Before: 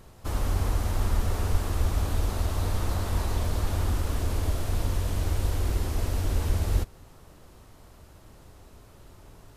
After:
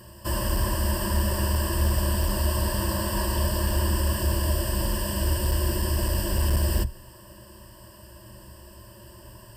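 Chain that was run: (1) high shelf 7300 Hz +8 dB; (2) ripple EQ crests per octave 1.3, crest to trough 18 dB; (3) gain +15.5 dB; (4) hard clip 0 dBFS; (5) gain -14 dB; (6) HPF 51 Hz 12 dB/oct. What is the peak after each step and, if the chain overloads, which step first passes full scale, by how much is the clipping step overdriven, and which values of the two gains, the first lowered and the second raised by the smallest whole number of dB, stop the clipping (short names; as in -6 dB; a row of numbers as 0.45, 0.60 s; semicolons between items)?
-10.5, -10.0, +5.5, 0.0, -14.0, -12.0 dBFS; step 3, 5.5 dB; step 3 +9.5 dB, step 5 -8 dB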